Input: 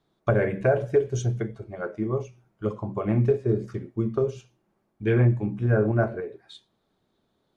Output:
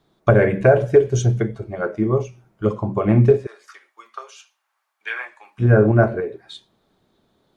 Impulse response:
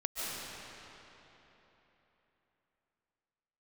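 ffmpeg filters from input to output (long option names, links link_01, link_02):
-filter_complex "[0:a]asplit=3[link_01][link_02][link_03];[link_01]afade=type=out:start_time=3.45:duration=0.02[link_04];[link_02]highpass=frequency=1000:width=0.5412,highpass=frequency=1000:width=1.3066,afade=type=in:start_time=3.45:duration=0.02,afade=type=out:start_time=5.58:duration=0.02[link_05];[link_03]afade=type=in:start_time=5.58:duration=0.02[link_06];[link_04][link_05][link_06]amix=inputs=3:normalize=0,volume=8dB"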